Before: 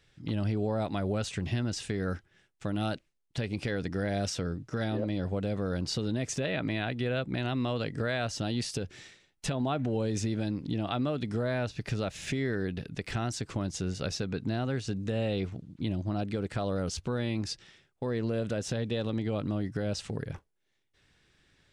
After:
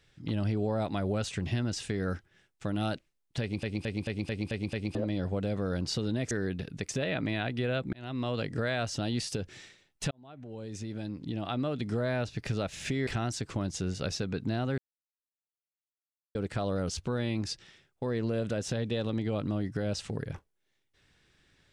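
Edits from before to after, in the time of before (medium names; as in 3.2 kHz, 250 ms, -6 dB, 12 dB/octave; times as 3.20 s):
3.41 s: stutter in place 0.22 s, 7 plays
7.35–7.87 s: fade in equal-power
9.53–11.32 s: fade in linear
12.49–13.07 s: move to 6.31 s
14.78–16.35 s: mute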